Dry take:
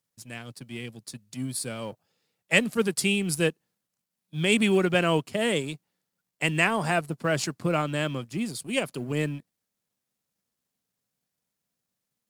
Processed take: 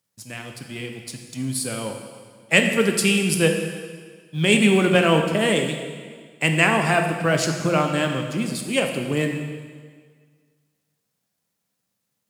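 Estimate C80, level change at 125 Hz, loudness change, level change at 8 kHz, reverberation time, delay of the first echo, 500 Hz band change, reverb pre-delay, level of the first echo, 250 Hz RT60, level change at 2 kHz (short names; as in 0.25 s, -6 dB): 7.0 dB, +6.0 dB, +5.5 dB, +6.0 dB, 1.7 s, none, +6.0 dB, 6 ms, none, 1.7 s, +6.0 dB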